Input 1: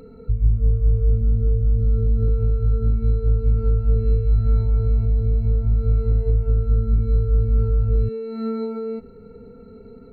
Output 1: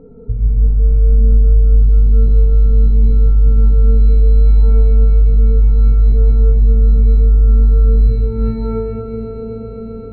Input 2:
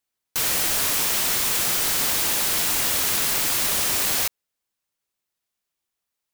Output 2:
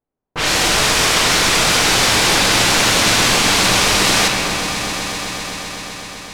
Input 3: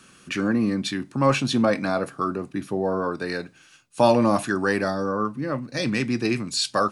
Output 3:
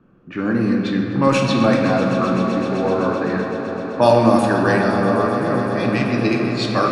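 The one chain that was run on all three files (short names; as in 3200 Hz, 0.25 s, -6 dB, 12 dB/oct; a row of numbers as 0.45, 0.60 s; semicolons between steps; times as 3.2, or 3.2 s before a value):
low-pass opened by the level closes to 630 Hz, open at -15.5 dBFS; on a send: swelling echo 0.128 s, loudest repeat 5, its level -16 dB; on the sum: shoebox room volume 170 m³, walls hard, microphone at 0.42 m; normalise peaks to -1.5 dBFS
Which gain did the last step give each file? +3.0, +10.5, +2.0 dB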